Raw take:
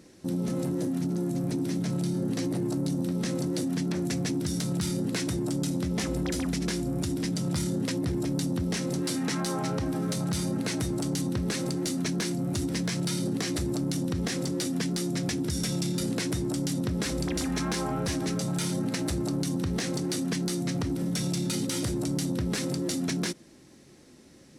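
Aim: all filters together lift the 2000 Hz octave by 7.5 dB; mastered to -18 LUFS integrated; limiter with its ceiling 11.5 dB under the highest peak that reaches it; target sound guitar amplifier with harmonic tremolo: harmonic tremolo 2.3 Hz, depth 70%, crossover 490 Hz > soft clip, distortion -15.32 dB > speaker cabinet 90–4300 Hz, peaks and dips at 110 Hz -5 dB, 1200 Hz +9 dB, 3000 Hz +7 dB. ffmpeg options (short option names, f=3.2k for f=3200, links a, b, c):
-filter_complex "[0:a]equalizer=f=2k:t=o:g=7,alimiter=level_in=3.5dB:limit=-24dB:level=0:latency=1,volume=-3.5dB,acrossover=split=490[a][b];[a]aeval=exprs='val(0)*(1-0.7/2+0.7/2*cos(2*PI*2.3*n/s))':c=same[c];[b]aeval=exprs='val(0)*(1-0.7/2-0.7/2*cos(2*PI*2.3*n/s))':c=same[d];[c][d]amix=inputs=2:normalize=0,asoftclip=threshold=-34dB,highpass=90,equalizer=f=110:t=q:w=4:g=-5,equalizer=f=1.2k:t=q:w=4:g=9,equalizer=f=3k:t=q:w=4:g=7,lowpass=f=4.3k:w=0.5412,lowpass=f=4.3k:w=1.3066,volume=23dB"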